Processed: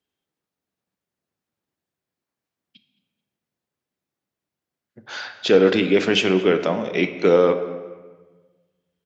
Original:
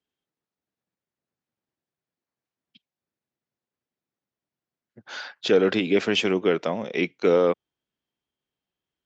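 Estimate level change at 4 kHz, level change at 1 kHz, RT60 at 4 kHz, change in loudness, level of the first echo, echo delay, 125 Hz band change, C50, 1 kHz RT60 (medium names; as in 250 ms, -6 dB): +4.0 dB, +4.0 dB, 0.95 s, +4.5 dB, -21.5 dB, 218 ms, +5.5 dB, 10.0 dB, 1.3 s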